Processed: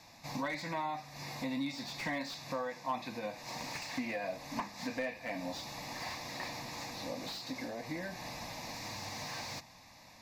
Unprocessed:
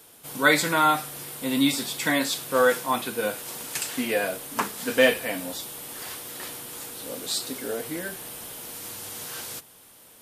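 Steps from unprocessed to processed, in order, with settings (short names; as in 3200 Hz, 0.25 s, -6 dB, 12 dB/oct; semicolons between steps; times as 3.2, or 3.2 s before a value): LPF 6000 Hz 12 dB/oct; compressor 5:1, threshold -37 dBFS, peak gain reduction 21 dB; dynamic EQ 430 Hz, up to +6 dB, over -50 dBFS, Q 0.92; fixed phaser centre 2100 Hz, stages 8; slew limiter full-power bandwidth 25 Hz; gain +3.5 dB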